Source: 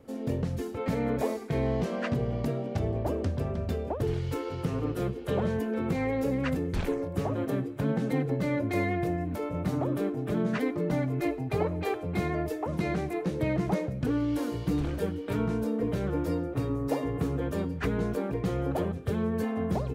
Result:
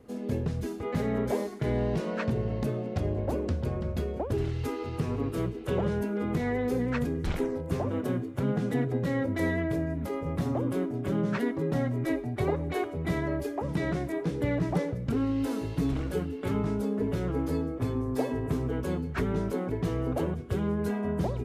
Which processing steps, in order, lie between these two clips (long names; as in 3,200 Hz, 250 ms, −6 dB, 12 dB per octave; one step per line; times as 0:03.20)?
speed change −7%